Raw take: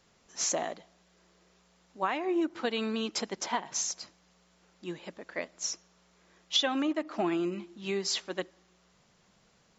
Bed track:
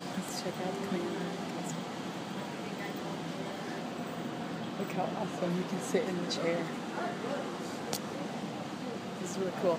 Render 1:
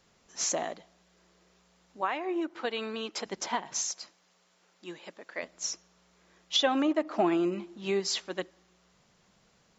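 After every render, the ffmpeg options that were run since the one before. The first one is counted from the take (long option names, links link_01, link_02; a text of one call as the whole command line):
ffmpeg -i in.wav -filter_complex "[0:a]asettb=1/sr,asplit=3[link_01][link_02][link_03];[link_01]atrim=end=2.014[link_04];[link_02]atrim=start=2.01:end=3.26,asetpts=PTS-STARTPTS,afade=type=in:duration=0.004:curve=qsin,afade=type=out:start_time=1.246:duration=0.004:curve=qsin,bass=frequency=250:gain=-12,treble=frequency=4000:gain=-5[link_05];[link_03]atrim=start=3.256[link_06];[link_04][link_05]acrossfade=duration=0.004:curve1=hsin:curve2=qsin[link_07];[link_07][link_06]acrossfade=duration=0.004:curve1=qsin:curve2=hsin,asettb=1/sr,asplit=3[link_08][link_09][link_10];[link_08]atrim=end=3.814[link_11];[link_09]atrim=start=3.81:end=5.43,asetpts=PTS-STARTPTS,afade=type=in:duration=0.004:curve=qsin,afade=type=out:start_time=1.616:duration=0.004:curve=qsin,highpass=frequency=440:poles=1[link_12];[link_10]atrim=start=5.426[link_13];[link_11][link_12]acrossfade=duration=0.004:curve1=hsin:curve2=qsin[link_14];[link_14][link_13]acrossfade=duration=0.004:curve1=qsin:curve2=hsin,asettb=1/sr,asplit=3[link_15][link_16][link_17];[link_15]atrim=end=6.594[link_18];[link_16]atrim=start=6.59:end=8,asetpts=PTS-STARTPTS,afade=type=in:duration=0.004:curve=qsin,afade=type=out:start_time=1.406:duration=0.004:curve=qsin,equalizer=frequency=620:width_type=o:width=2:gain=5.5[link_19];[link_17]atrim=start=7.996[link_20];[link_18][link_19]acrossfade=duration=0.004:curve1=hsin:curve2=qsin[link_21];[link_21][link_20]acrossfade=duration=0.004:curve1=qsin:curve2=hsin" out.wav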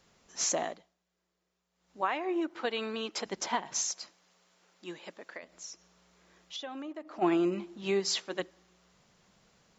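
ffmpeg -i in.wav -filter_complex "[0:a]asplit=3[link_01][link_02][link_03];[link_01]afade=type=out:start_time=5.36:duration=0.02[link_04];[link_02]acompressor=threshold=-50dB:ratio=2:attack=3.2:release=140:knee=1:detection=peak,afade=type=in:start_time=5.36:duration=0.02,afade=type=out:start_time=7.21:duration=0.02[link_05];[link_03]afade=type=in:start_time=7.21:duration=0.02[link_06];[link_04][link_05][link_06]amix=inputs=3:normalize=0,asettb=1/sr,asplit=3[link_07][link_08][link_09];[link_07]atrim=end=7.814[link_10];[link_08]atrim=start=7.81:end=8.4,asetpts=PTS-STARTPTS,afade=type=in:duration=0.004:curve=qsin,afade=type=out:start_time=0.586:duration=0.004:curve=qsin,bandreject=frequency=60:width_type=h:width=6,bandreject=frequency=120:width_type=h:width=6,bandreject=frequency=180:width_type=h:width=6,bandreject=frequency=240:width_type=h:width=6,bandreject=frequency=300:width_type=h:width=6,bandreject=frequency=360:width_type=h:width=6,bandreject=frequency=420:width_type=h:width=6,bandreject=frequency=480:width_type=h:width=6[link_11];[link_09]atrim=start=8.396[link_12];[link_10][link_11]acrossfade=duration=0.004:curve1=hsin:curve2=qsin[link_13];[link_13][link_12]acrossfade=duration=0.004:curve1=qsin:curve2=hsin,asplit=3[link_14][link_15][link_16];[link_14]atrim=end=1.01,asetpts=PTS-STARTPTS,afade=type=out:start_time=0.66:duration=0.35:curve=qua:silence=0.133352[link_17];[link_15]atrim=start=1.01:end=1.66,asetpts=PTS-STARTPTS,volume=-17.5dB[link_18];[link_16]atrim=start=1.66,asetpts=PTS-STARTPTS,afade=type=in:duration=0.35:curve=qua:silence=0.133352[link_19];[link_17][link_18][link_19]concat=n=3:v=0:a=1" out.wav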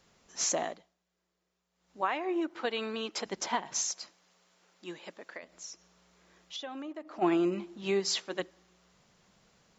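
ffmpeg -i in.wav -af anull out.wav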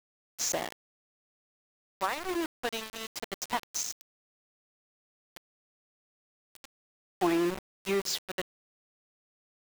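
ffmpeg -i in.wav -af "aeval=exprs='val(0)*gte(abs(val(0)),0.0299)':channel_layout=same" out.wav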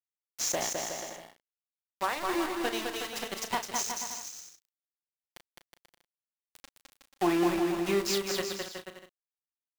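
ffmpeg -i in.wav -filter_complex "[0:a]asplit=2[link_01][link_02];[link_02]adelay=35,volume=-10dB[link_03];[link_01][link_03]amix=inputs=2:normalize=0,asplit=2[link_04][link_05];[link_05]aecho=0:1:210|367.5|485.6|574.2|640.7:0.631|0.398|0.251|0.158|0.1[link_06];[link_04][link_06]amix=inputs=2:normalize=0" out.wav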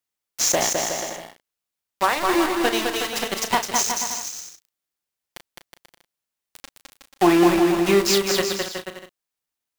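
ffmpeg -i in.wav -af "volume=10.5dB" out.wav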